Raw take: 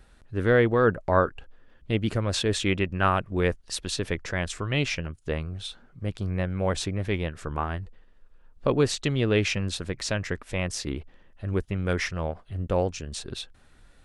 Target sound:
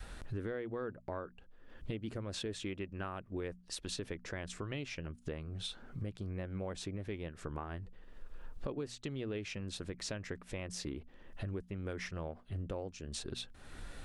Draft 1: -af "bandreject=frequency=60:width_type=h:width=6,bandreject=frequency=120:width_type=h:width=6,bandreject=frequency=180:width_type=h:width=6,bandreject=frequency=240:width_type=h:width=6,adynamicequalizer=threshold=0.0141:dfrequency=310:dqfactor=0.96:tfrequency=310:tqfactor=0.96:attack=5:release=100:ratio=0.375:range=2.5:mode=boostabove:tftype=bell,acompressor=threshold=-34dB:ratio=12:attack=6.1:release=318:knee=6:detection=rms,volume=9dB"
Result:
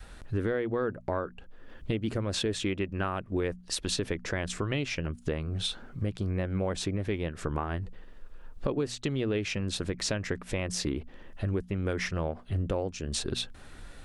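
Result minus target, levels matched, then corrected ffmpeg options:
downward compressor: peak gain reduction −10 dB
-af "bandreject=frequency=60:width_type=h:width=6,bandreject=frequency=120:width_type=h:width=6,bandreject=frequency=180:width_type=h:width=6,bandreject=frequency=240:width_type=h:width=6,adynamicequalizer=threshold=0.0141:dfrequency=310:dqfactor=0.96:tfrequency=310:tqfactor=0.96:attack=5:release=100:ratio=0.375:range=2.5:mode=boostabove:tftype=bell,acompressor=threshold=-45dB:ratio=12:attack=6.1:release=318:knee=6:detection=rms,volume=9dB"

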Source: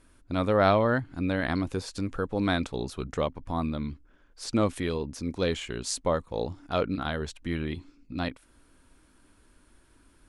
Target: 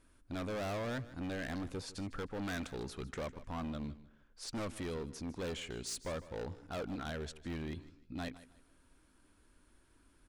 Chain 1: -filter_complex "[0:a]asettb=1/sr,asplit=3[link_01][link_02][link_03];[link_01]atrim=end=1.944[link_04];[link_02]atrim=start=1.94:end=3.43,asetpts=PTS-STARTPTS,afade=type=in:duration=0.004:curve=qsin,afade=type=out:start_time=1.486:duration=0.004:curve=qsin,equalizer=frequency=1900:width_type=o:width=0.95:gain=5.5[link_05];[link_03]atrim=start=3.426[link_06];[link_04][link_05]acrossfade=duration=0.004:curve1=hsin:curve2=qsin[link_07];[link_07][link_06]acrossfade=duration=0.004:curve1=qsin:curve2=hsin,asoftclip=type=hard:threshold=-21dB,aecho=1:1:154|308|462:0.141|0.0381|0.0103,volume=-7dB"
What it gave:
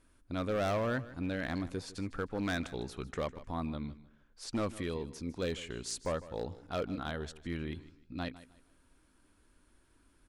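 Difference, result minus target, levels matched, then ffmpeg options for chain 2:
hard clipping: distortion −7 dB
-filter_complex "[0:a]asettb=1/sr,asplit=3[link_01][link_02][link_03];[link_01]atrim=end=1.944[link_04];[link_02]atrim=start=1.94:end=3.43,asetpts=PTS-STARTPTS,afade=type=in:duration=0.004:curve=qsin,afade=type=out:start_time=1.486:duration=0.004:curve=qsin,equalizer=frequency=1900:width_type=o:width=0.95:gain=5.5[link_05];[link_03]atrim=start=3.426[link_06];[link_04][link_05]acrossfade=duration=0.004:curve1=hsin:curve2=qsin[link_07];[link_07][link_06]acrossfade=duration=0.004:curve1=qsin:curve2=hsin,asoftclip=type=hard:threshold=-29.5dB,aecho=1:1:154|308|462:0.141|0.0381|0.0103,volume=-7dB"

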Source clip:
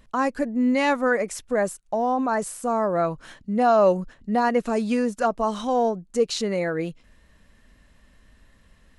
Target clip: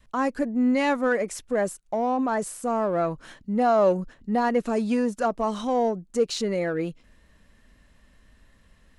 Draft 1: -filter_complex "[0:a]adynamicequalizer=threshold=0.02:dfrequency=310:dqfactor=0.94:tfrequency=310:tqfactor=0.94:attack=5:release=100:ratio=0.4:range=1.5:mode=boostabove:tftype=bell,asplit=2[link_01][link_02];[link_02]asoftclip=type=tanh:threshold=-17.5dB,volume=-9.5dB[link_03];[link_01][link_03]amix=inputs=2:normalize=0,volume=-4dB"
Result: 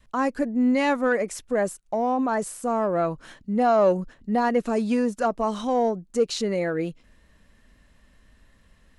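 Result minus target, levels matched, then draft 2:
soft clipping: distortion −6 dB
-filter_complex "[0:a]adynamicequalizer=threshold=0.02:dfrequency=310:dqfactor=0.94:tfrequency=310:tqfactor=0.94:attack=5:release=100:ratio=0.4:range=1.5:mode=boostabove:tftype=bell,asplit=2[link_01][link_02];[link_02]asoftclip=type=tanh:threshold=-26dB,volume=-9.5dB[link_03];[link_01][link_03]amix=inputs=2:normalize=0,volume=-4dB"

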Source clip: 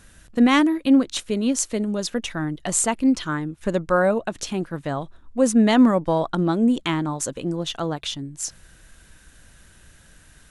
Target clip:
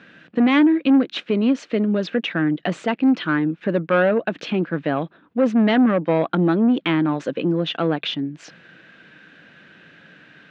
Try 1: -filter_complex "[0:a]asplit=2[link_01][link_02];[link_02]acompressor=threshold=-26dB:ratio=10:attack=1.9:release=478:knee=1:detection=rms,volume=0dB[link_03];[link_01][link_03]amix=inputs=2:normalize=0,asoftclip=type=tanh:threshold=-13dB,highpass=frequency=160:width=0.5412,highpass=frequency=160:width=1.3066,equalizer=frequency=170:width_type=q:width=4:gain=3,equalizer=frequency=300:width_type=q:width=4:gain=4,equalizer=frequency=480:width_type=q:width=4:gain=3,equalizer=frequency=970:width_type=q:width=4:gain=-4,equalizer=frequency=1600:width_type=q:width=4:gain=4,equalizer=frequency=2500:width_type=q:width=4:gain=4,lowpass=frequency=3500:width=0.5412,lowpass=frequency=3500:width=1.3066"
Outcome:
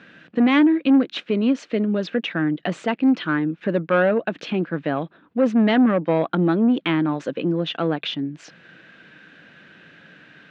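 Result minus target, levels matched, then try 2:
downward compressor: peak gain reduction +5.5 dB
-filter_complex "[0:a]asplit=2[link_01][link_02];[link_02]acompressor=threshold=-20dB:ratio=10:attack=1.9:release=478:knee=1:detection=rms,volume=0dB[link_03];[link_01][link_03]amix=inputs=2:normalize=0,asoftclip=type=tanh:threshold=-13dB,highpass=frequency=160:width=0.5412,highpass=frequency=160:width=1.3066,equalizer=frequency=170:width_type=q:width=4:gain=3,equalizer=frequency=300:width_type=q:width=4:gain=4,equalizer=frequency=480:width_type=q:width=4:gain=3,equalizer=frequency=970:width_type=q:width=4:gain=-4,equalizer=frequency=1600:width_type=q:width=4:gain=4,equalizer=frequency=2500:width_type=q:width=4:gain=4,lowpass=frequency=3500:width=0.5412,lowpass=frequency=3500:width=1.3066"

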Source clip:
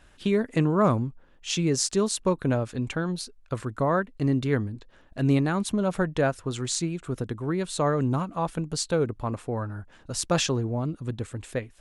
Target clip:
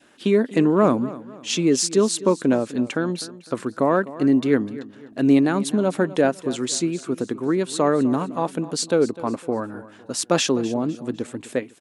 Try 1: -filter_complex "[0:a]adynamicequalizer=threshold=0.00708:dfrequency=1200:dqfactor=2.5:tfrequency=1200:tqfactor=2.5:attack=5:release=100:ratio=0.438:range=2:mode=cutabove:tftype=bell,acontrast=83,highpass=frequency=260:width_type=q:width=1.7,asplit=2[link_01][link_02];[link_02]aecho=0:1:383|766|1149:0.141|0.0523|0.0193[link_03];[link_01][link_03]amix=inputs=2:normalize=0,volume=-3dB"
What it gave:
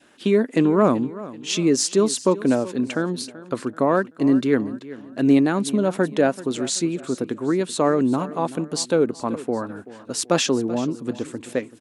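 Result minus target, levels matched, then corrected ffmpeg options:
echo 130 ms late
-filter_complex "[0:a]adynamicequalizer=threshold=0.00708:dfrequency=1200:dqfactor=2.5:tfrequency=1200:tqfactor=2.5:attack=5:release=100:ratio=0.438:range=2:mode=cutabove:tftype=bell,acontrast=83,highpass=frequency=260:width_type=q:width=1.7,asplit=2[link_01][link_02];[link_02]aecho=0:1:253|506|759:0.141|0.0523|0.0193[link_03];[link_01][link_03]amix=inputs=2:normalize=0,volume=-3dB"

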